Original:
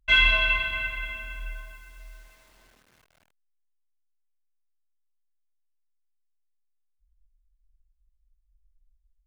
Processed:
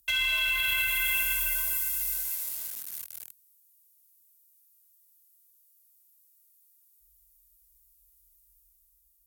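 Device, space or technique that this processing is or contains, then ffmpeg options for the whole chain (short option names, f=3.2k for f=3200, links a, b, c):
FM broadcast chain: -filter_complex "[0:a]highpass=54,dynaudnorm=f=150:g=9:m=3dB,acrossover=split=160|940|3700[a][b][c][d];[a]acompressor=threshold=-40dB:ratio=4[e];[b]acompressor=threshold=-52dB:ratio=4[f];[c]acompressor=threshold=-28dB:ratio=4[g];[d]acompressor=threshold=-43dB:ratio=4[h];[e][f][g][h]amix=inputs=4:normalize=0,aemphasis=mode=production:type=75fm,alimiter=limit=-22.5dB:level=0:latency=1:release=18,asoftclip=type=hard:threshold=-24dB,lowpass=f=15k:w=0.5412,lowpass=f=15k:w=1.3066,aemphasis=mode=production:type=75fm"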